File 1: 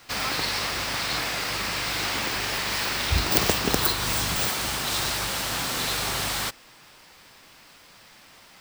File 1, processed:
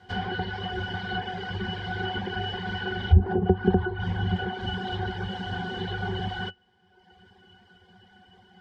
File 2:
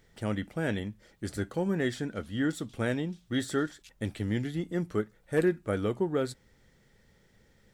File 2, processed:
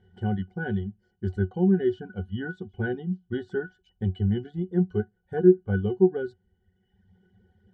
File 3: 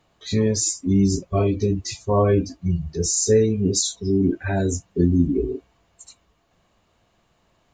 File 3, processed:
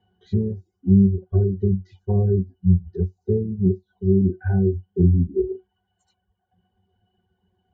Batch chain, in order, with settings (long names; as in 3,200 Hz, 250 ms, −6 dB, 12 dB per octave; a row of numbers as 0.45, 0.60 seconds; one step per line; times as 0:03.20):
reverb reduction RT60 1.2 s
treble cut that deepens with the level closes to 500 Hz, closed at −18.5 dBFS
resonances in every octave F#, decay 0.12 s
normalise the peak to −6 dBFS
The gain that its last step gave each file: +14.5, +13.5, +8.0 decibels